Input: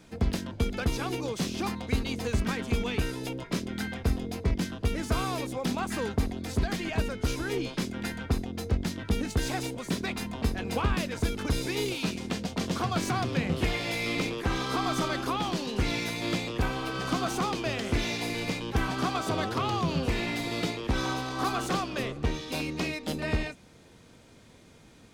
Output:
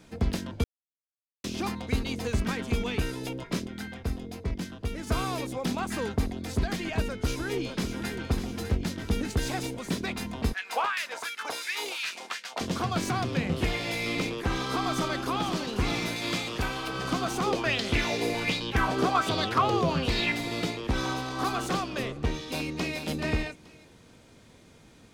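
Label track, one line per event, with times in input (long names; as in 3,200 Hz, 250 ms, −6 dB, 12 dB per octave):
0.640000	1.440000	silence
3.670000	5.070000	clip gain −4.5 dB
7.080000	8.130000	delay throw 600 ms, feedback 60%, level −8.5 dB
10.530000	12.610000	auto-filter high-pass sine 2.8 Hz 690–1,900 Hz
14.820000	15.660000	delay throw 500 ms, feedback 60%, level −9 dB
16.160000	16.880000	tilt shelving filter lows −3.5 dB, about 1,100 Hz
17.460000	20.320000	auto-filter bell 1.3 Hz 410–4,400 Hz +12 dB
22.500000	23.010000	delay throw 430 ms, feedback 15%, level −6.5 dB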